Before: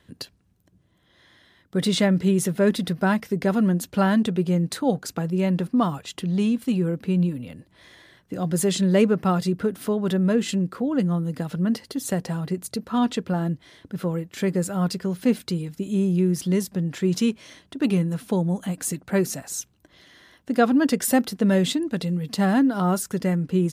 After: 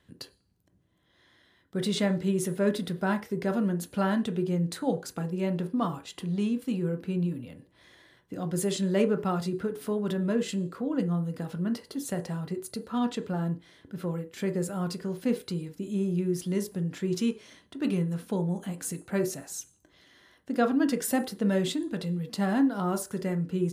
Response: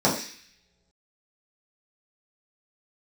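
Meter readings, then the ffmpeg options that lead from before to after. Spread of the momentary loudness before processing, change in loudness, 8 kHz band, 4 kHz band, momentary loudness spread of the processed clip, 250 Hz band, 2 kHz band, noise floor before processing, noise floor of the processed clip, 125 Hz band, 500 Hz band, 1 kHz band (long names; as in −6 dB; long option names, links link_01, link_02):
9 LU, −6.5 dB, −7.0 dB, −7.0 dB, 9 LU, −6.5 dB, −6.5 dB, −62 dBFS, −67 dBFS, −6.5 dB, −5.5 dB, −6.5 dB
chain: -filter_complex "[0:a]asplit=2[link_01][link_02];[1:a]atrim=start_sample=2205,asetrate=79380,aresample=44100,adelay=20[link_03];[link_02][link_03]afir=irnorm=-1:irlink=0,volume=-23dB[link_04];[link_01][link_04]amix=inputs=2:normalize=0,volume=-7dB"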